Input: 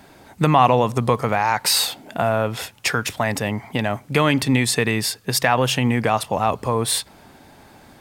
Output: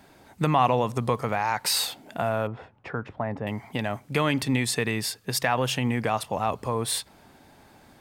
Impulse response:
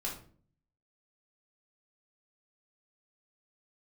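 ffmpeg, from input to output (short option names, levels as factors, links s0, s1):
-filter_complex "[0:a]asettb=1/sr,asplit=3[s0][s1][s2];[s0]atrim=end=2.474[s3];[s1]atrim=start=2.47:end=3.47,asetpts=PTS-STARTPTS,afade=t=in:d=0.004:c=qsin,afade=t=out:st=0.996:d=0.004:c=qsin,lowpass=1100[s4];[s2]atrim=start=3.466[s5];[s3][s4]acrossfade=d=0.004:c1=hsin:c2=qsin[s6];[s6][s5]acrossfade=d=0.004:c1=qsin:c2=hsin,volume=0.473"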